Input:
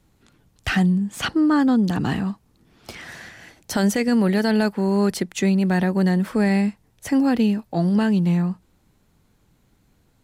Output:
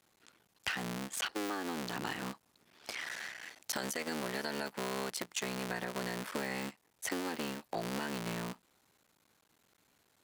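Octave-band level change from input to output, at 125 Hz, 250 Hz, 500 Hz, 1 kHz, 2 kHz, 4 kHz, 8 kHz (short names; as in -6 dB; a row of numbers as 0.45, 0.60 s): -23.5, -23.0, -15.0, -11.5, -10.0, -7.5, -5.5 dB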